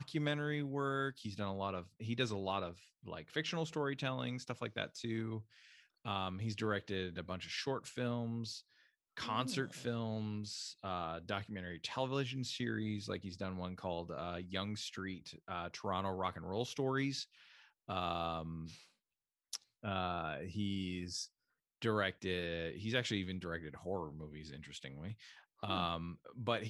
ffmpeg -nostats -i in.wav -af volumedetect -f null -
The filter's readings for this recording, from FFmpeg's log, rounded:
mean_volume: -40.9 dB
max_volume: -19.0 dB